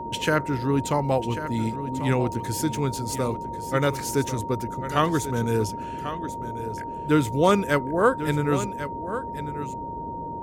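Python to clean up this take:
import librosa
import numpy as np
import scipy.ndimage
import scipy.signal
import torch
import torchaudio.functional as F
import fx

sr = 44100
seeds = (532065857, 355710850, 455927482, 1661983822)

y = fx.notch(x, sr, hz=930.0, q=30.0)
y = fx.noise_reduce(y, sr, print_start_s=9.71, print_end_s=10.21, reduce_db=30.0)
y = fx.fix_echo_inverse(y, sr, delay_ms=1092, level_db=-11.5)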